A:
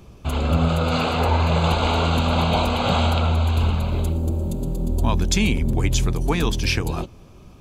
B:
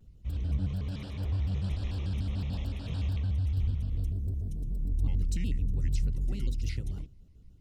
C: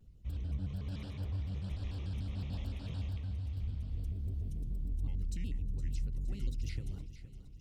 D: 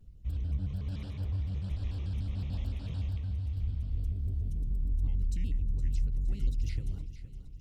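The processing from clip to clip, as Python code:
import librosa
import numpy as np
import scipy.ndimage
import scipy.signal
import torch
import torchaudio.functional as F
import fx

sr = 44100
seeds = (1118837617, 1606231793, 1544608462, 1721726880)

y1 = fx.spec_box(x, sr, start_s=6.37, length_s=0.4, low_hz=500.0, high_hz=1600.0, gain_db=-7)
y1 = fx.tone_stack(y1, sr, knobs='10-0-1')
y1 = fx.vibrato_shape(y1, sr, shape='square', rate_hz=6.8, depth_cents=250.0)
y2 = fx.rider(y1, sr, range_db=4, speed_s=0.5)
y2 = fx.echo_feedback(y2, sr, ms=465, feedback_pct=54, wet_db=-13.0)
y2 = y2 * 10.0 ** (-7.0 / 20.0)
y3 = fx.low_shelf(y2, sr, hz=98.0, db=7.5)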